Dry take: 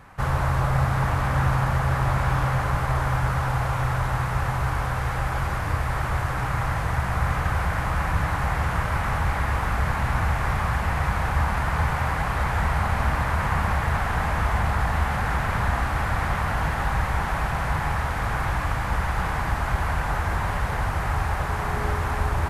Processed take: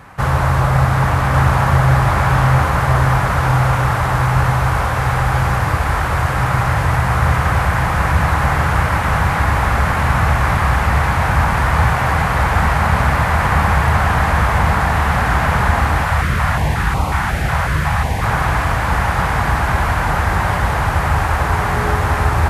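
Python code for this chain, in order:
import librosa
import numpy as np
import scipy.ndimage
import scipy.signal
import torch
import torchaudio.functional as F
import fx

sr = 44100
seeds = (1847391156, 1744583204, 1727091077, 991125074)

y = scipy.signal.sosfilt(scipy.signal.butter(2, 53.0, 'highpass', fs=sr, output='sos'), x)
y = y + 10.0 ** (-5.0 / 20.0) * np.pad(y, (int(1144 * sr / 1000.0), 0))[:len(y)]
y = fx.filter_held_notch(y, sr, hz=5.5, low_hz=300.0, high_hz=1700.0, at=(16.03, 18.24))
y = F.gain(torch.from_numpy(y), 8.5).numpy()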